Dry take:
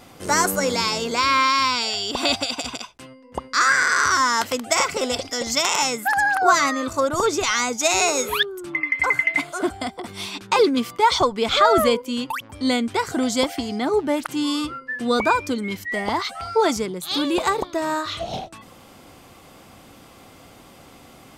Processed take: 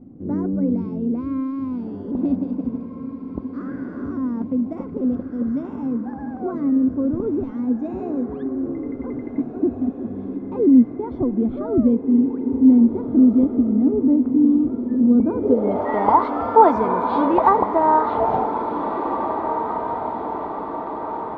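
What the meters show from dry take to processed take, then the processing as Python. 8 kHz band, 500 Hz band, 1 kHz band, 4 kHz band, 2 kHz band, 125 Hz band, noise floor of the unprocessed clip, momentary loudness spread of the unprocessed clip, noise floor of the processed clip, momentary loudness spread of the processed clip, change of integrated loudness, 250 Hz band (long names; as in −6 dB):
below −40 dB, 0.0 dB, +0.5 dB, below −30 dB, below −15 dB, +5.5 dB, −47 dBFS, 10 LU, −33 dBFS, 13 LU, +0.5 dB, +9.5 dB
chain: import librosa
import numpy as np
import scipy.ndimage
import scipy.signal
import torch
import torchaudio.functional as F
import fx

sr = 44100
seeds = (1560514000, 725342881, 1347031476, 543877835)

y = fx.echo_diffused(x, sr, ms=1757, feedback_pct=57, wet_db=-7.5)
y = fx.filter_sweep_lowpass(y, sr, from_hz=260.0, to_hz=950.0, start_s=15.24, end_s=15.9, q=3.0)
y = F.gain(torch.from_numpy(y), 1.5).numpy()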